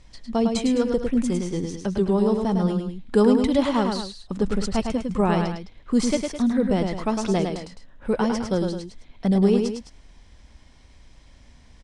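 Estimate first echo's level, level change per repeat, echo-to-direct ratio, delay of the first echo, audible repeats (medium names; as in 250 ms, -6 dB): -5.0 dB, -6.5 dB, -4.0 dB, 105 ms, 2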